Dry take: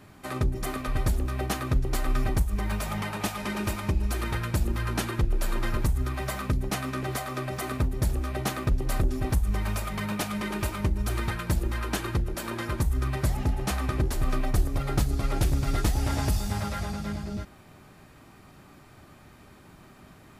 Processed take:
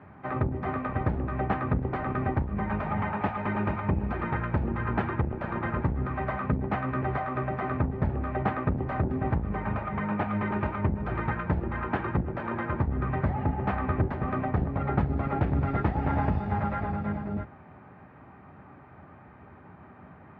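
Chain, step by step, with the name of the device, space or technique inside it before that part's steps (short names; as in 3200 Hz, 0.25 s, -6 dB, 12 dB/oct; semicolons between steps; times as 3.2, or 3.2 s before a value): 9.59–10.28 air absorption 83 m; sub-octave bass pedal (octaver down 1 oct, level -2 dB; speaker cabinet 76–2000 Hz, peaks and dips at 110 Hz -4 dB, 330 Hz -3 dB, 840 Hz +5 dB); gain +2 dB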